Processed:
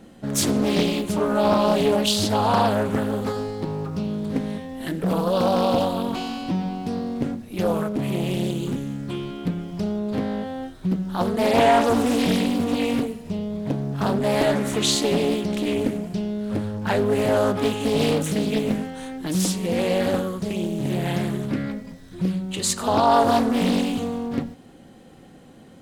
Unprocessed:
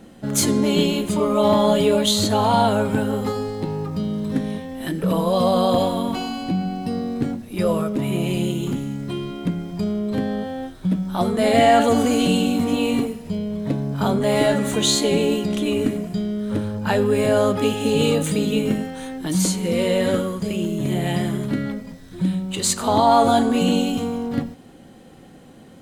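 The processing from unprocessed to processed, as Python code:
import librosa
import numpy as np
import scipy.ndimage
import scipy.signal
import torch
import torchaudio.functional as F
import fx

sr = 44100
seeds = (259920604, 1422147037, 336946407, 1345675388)

y = fx.doppler_dist(x, sr, depth_ms=0.57)
y = y * librosa.db_to_amplitude(-2.0)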